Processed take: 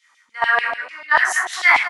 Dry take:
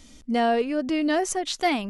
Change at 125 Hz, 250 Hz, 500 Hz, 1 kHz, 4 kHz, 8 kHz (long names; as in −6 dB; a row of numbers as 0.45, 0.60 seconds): can't be measured, below −25 dB, −6.5 dB, +6.0 dB, +3.0 dB, +3.0 dB